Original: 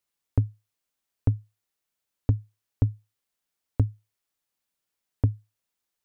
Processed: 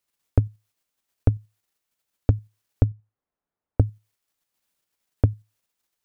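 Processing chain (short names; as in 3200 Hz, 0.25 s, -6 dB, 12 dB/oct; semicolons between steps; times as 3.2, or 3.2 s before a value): 2.84–3.8 LPF 1100 Hz 12 dB/oct; dynamic EQ 200 Hz, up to -6 dB, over -36 dBFS, Q 0.8; in parallel at -1 dB: level quantiser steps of 21 dB; on the sum: gain +1.5 dB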